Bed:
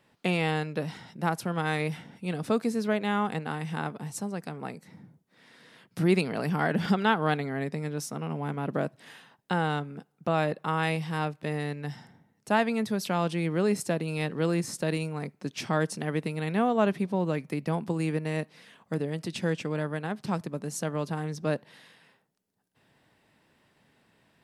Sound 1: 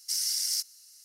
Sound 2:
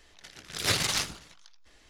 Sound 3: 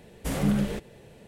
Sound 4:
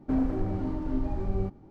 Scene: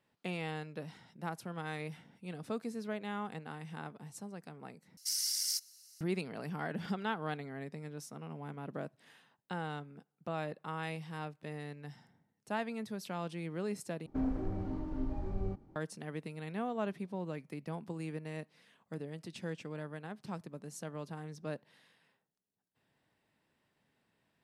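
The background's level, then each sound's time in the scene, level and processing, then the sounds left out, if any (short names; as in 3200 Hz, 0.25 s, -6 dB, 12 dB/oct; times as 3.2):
bed -12 dB
4.97 replace with 1 -5 dB
14.06 replace with 4 -7.5 dB
not used: 2, 3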